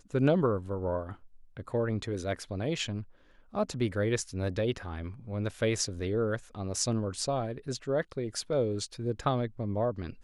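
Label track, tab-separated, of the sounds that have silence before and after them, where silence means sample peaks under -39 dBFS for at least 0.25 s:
1.570000	3.030000	sound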